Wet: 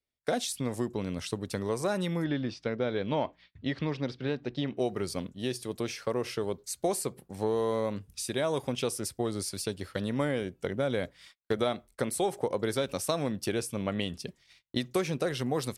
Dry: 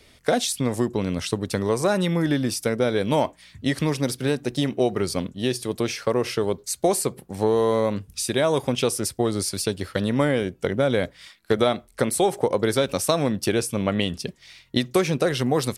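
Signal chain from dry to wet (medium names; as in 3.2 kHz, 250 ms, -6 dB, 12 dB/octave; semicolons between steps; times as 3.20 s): 2.24–4.77 s: low-pass 4.3 kHz 24 dB/octave; gate -45 dBFS, range -30 dB; trim -8.5 dB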